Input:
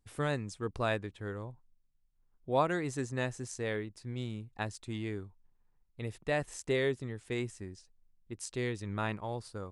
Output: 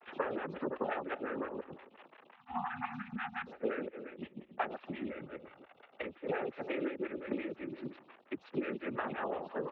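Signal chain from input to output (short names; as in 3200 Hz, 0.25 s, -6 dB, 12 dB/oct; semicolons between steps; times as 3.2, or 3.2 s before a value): reverse delay 0.114 s, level -5 dB; crackle 210/s -44 dBFS; noise vocoder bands 12; 3.53–4.58 gate -35 dBFS, range -22 dB; 5.1–6.03 comb 1.4 ms, depth 45%; echo 0.278 s -21 dB; 2.35–3.47 spectral delete 320–770 Hz; compressor 16:1, threshold -44 dBFS, peak gain reduction 22 dB; mistuned SSB -56 Hz 250–3100 Hz; photocell phaser 5.7 Hz; gain +14.5 dB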